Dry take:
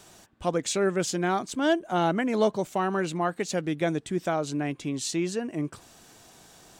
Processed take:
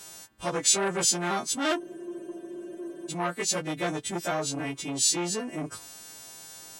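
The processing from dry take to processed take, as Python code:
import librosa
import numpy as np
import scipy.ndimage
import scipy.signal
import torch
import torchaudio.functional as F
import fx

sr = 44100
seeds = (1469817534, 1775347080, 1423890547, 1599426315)

y = fx.freq_snap(x, sr, grid_st=2)
y = fx.spec_freeze(y, sr, seeds[0], at_s=1.82, hold_s=1.29)
y = fx.transformer_sat(y, sr, knee_hz=2200.0)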